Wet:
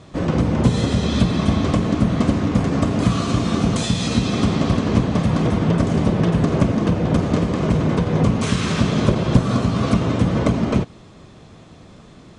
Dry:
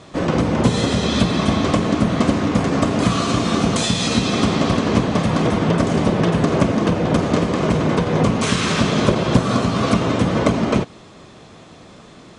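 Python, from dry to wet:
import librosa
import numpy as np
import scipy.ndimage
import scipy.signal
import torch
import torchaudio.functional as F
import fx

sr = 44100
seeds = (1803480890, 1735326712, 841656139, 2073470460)

y = fx.low_shelf(x, sr, hz=190.0, db=10.5)
y = y * 10.0 ** (-5.0 / 20.0)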